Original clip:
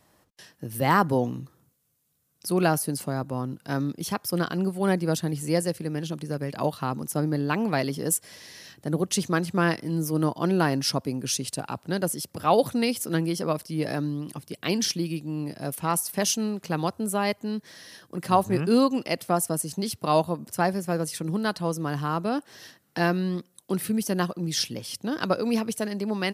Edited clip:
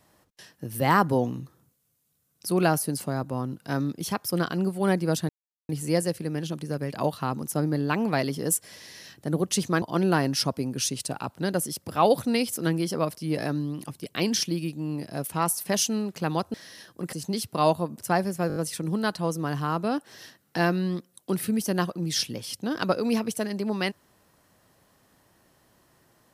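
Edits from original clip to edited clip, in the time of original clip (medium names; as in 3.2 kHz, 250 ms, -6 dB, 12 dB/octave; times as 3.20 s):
5.29 s: insert silence 0.40 s
9.42–10.30 s: delete
17.02–17.68 s: delete
18.27–19.62 s: delete
20.97 s: stutter 0.02 s, 5 plays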